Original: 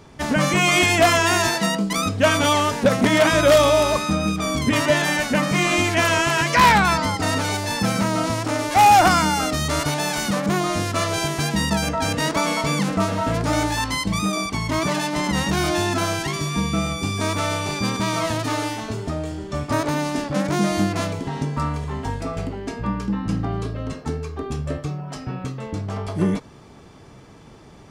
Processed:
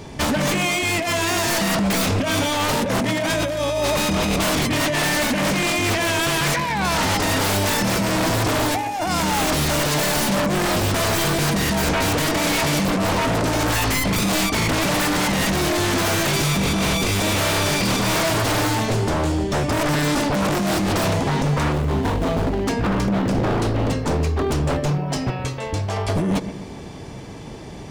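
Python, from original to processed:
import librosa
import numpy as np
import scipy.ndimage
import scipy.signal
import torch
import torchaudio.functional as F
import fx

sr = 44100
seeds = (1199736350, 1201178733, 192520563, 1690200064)

p1 = fx.median_filter(x, sr, points=25, at=(21.72, 22.64))
p2 = fx.peak_eq(p1, sr, hz=1300.0, db=-8.5, octaves=0.42)
p3 = fx.over_compress(p2, sr, threshold_db=-24.0, ratio=-1.0)
p4 = fx.peak_eq(p3, sr, hz=210.0, db=-14.5, octaves=1.6, at=(25.3, 26.09))
p5 = p4 + fx.echo_bbd(p4, sr, ms=126, stages=2048, feedback_pct=47, wet_db=-13.0, dry=0)
p6 = 10.0 ** (-22.5 / 20.0) * (np.abs((p5 / 10.0 ** (-22.5 / 20.0) + 3.0) % 4.0 - 2.0) - 1.0)
y = p6 * 10.0 ** (7.5 / 20.0)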